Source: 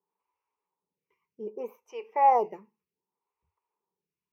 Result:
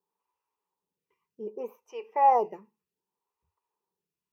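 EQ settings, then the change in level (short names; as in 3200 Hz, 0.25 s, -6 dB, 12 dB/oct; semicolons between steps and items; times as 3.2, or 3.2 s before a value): notch 2200 Hz, Q 9; 0.0 dB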